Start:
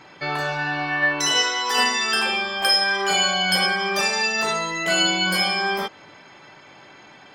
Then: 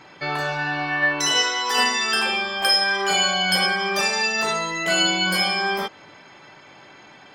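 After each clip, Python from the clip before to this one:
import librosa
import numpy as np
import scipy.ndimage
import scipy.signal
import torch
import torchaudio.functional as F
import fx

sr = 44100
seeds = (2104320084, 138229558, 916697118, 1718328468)

y = x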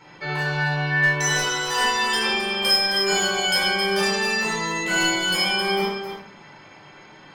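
y = np.clip(10.0 ** (14.5 / 20.0) * x, -1.0, 1.0) / 10.0 ** (14.5 / 20.0)
y = y + 10.0 ** (-8.0 / 20.0) * np.pad(y, (int(265 * sr / 1000.0), 0))[:len(y)]
y = fx.room_shoebox(y, sr, seeds[0], volume_m3=750.0, walls='furnished', distance_m=4.5)
y = F.gain(torch.from_numpy(y), -6.5).numpy()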